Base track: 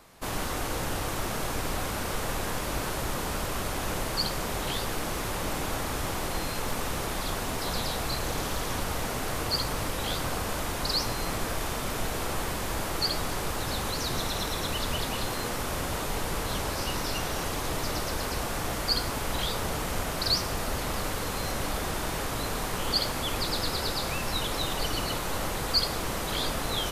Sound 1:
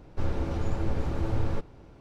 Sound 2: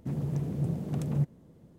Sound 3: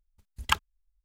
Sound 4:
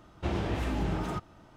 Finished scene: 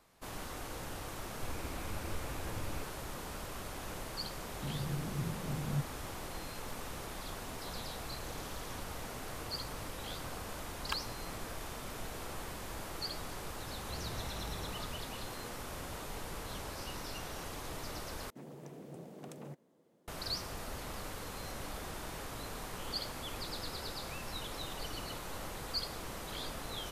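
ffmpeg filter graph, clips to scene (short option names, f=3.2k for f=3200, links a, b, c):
-filter_complex "[2:a]asplit=2[a][b];[0:a]volume=-12dB[c];[1:a]lowpass=f=2.5k:t=q:w=4.9[d];[a]tiltshelf=f=970:g=8[e];[4:a]equalizer=f=290:t=o:w=0.66:g=-13.5[f];[b]highpass=390[g];[c]asplit=2[h][i];[h]atrim=end=18.304[j];[g]atrim=end=1.78,asetpts=PTS-STARTPTS,volume=-5.5dB[k];[i]atrim=start=20.076[l];[d]atrim=end=2,asetpts=PTS-STARTPTS,volume=-14.5dB,afade=t=in:d=0.004:c=hsin,afade=t=out:st=1.996:d=0.004:c=hsin,adelay=1240[m];[e]atrim=end=1.78,asetpts=PTS-STARTPTS,volume=-15dB,afade=t=in:d=0.004:c=hsin,afade=t=out:st=1.776:d=0.004:c=hsin,adelay=201537S[n];[3:a]atrim=end=1.04,asetpts=PTS-STARTPTS,volume=-14dB,afade=t=in:d=0.004:c=hsin,afade=t=out:st=1.036:d=0.004:c=hsin,adelay=10400[o];[f]atrim=end=1.56,asetpts=PTS-STARTPTS,volume=-12dB,afade=t=in:d=0.004:c=hsin,afade=t=out:st=1.556:d=0.004:c=hsin,adelay=13670[p];[j][k]acrossfade=d=0.004:c1=hsin:c2=hsin[q];[q][l]acrossfade=d=0.004:c1=hsin:c2=hsin[r];[r][m][n][o][p]amix=inputs=5:normalize=0"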